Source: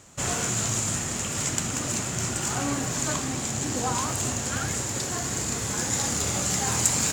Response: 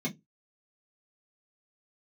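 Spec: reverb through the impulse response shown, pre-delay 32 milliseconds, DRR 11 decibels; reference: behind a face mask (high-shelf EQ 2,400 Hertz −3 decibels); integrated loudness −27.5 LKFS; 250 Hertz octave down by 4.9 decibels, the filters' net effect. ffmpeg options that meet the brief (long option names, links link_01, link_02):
-filter_complex "[0:a]equalizer=frequency=250:width_type=o:gain=-6.5,asplit=2[link_01][link_02];[1:a]atrim=start_sample=2205,adelay=32[link_03];[link_02][link_03]afir=irnorm=-1:irlink=0,volume=-15.5dB[link_04];[link_01][link_04]amix=inputs=2:normalize=0,highshelf=frequency=2400:gain=-3,volume=0.5dB"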